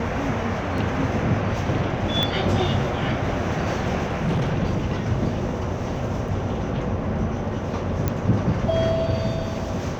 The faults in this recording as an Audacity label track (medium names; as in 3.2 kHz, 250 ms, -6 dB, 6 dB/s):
0.780000	0.780000	dropout 2.1 ms
2.230000	2.230000	pop -8 dBFS
4.060000	4.520000	clipped -18.5 dBFS
6.280000	6.280000	dropout 3.7 ms
8.080000	8.080000	pop -9 dBFS